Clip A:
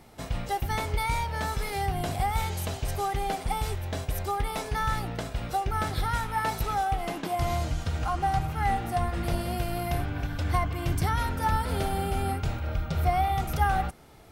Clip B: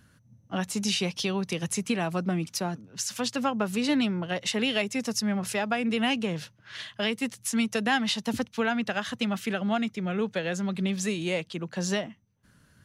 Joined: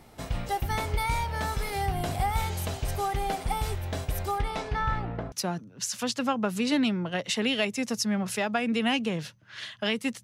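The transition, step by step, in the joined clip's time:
clip A
0:04.38–0:05.32: low-pass filter 8,200 Hz → 1,100 Hz
0:05.32: continue with clip B from 0:02.49

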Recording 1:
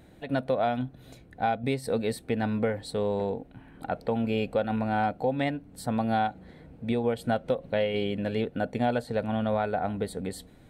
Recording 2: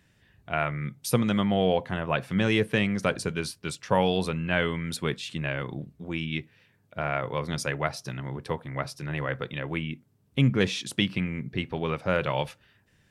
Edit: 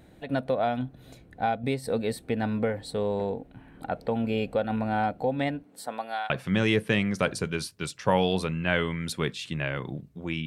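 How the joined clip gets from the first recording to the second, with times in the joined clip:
recording 1
0:05.62–0:06.30: high-pass filter 250 Hz → 1,300 Hz
0:06.30: continue with recording 2 from 0:02.14

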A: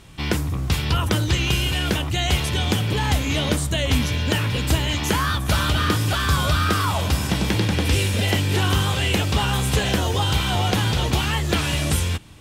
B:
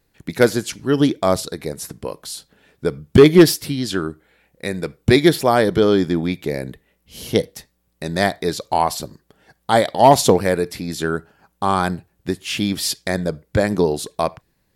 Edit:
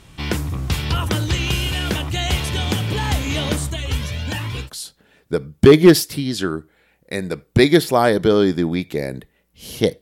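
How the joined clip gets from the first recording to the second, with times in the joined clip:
A
0:03.70–0:04.70: flanger whose copies keep moving one way rising 1.3 Hz
0:04.65: continue with B from 0:02.17, crossfade 0.10 s

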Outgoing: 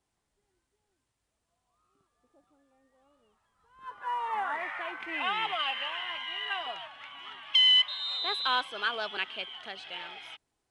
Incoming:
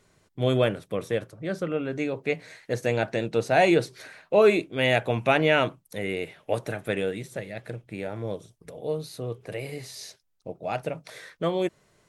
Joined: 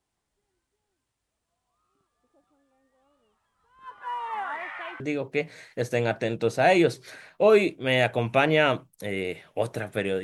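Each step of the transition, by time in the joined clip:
outgoing
0:05.00: continue with incoming from 0:01.92

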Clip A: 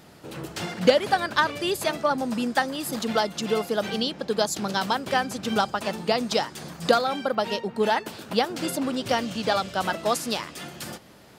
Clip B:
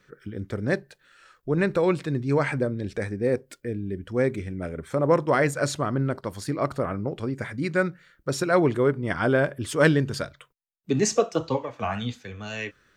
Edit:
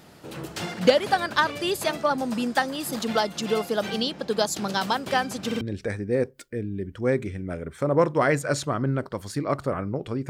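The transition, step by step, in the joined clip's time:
clip A
0:05.46: stutter in place 0.05 s, 3 plays
0:05.61: continue with clip B from 0:02.73

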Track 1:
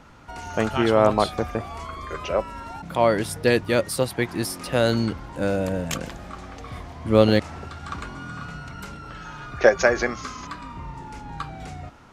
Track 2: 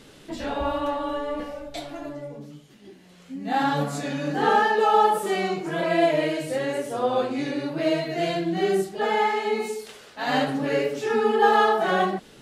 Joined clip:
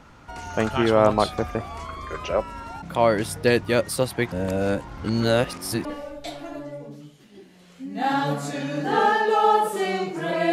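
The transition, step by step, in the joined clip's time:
track 1
0:04.32–0:05.85: reverse
0:05.85: continue with track 2 from 0:01.35

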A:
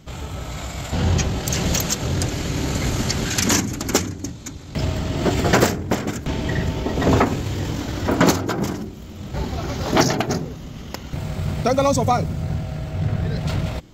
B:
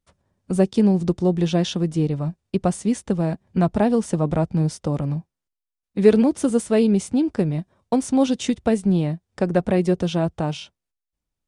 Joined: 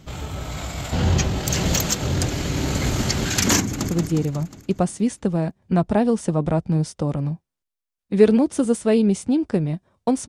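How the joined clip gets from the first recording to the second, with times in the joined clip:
A
0:03.60–0:03.89: delay throw 180 ms, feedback 60%, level −4 dB
0:03.89: continue with B from 0:01.74

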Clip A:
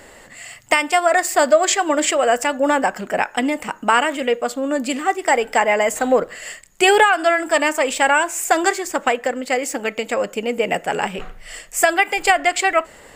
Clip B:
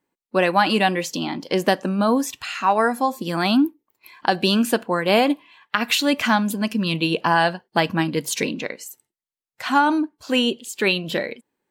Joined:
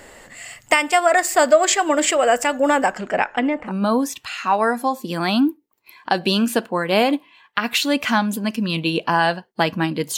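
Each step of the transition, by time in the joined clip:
clip A
0:02.91–0:03.76: low-pass filter 8,900 Hz → 1,200 Hz
0:03.70: continue with clip B from 0:01.87, crossfade 0.12 s

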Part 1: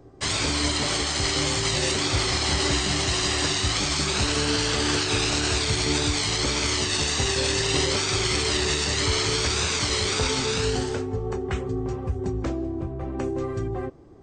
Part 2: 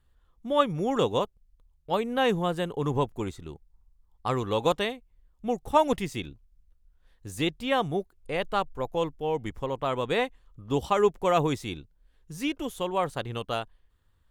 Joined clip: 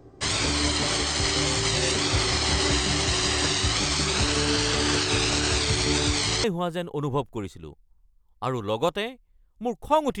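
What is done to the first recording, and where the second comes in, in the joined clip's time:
part 1
0:06.44: continue with part 2 from 0:02.27

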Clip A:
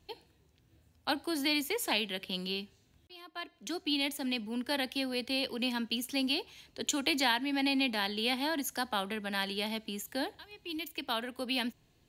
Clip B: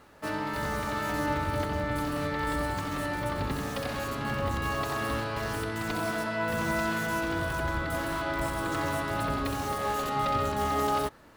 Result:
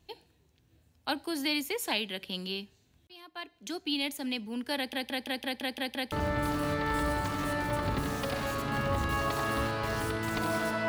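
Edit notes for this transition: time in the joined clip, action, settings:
clip A
0:04.76: stutter in place 0.17 s, 8 plays
0:06.12: continue with clip B from 0:01.65

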